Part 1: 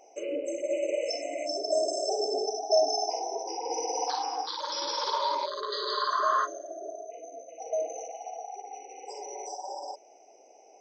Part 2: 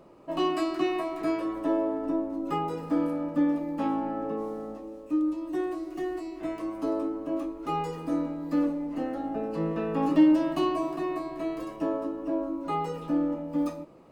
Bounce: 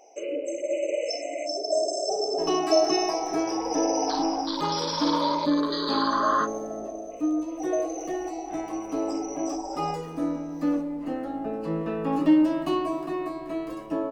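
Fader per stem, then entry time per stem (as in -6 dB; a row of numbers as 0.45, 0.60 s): +2.0, +0.5 dB; 0.00, 2.10 s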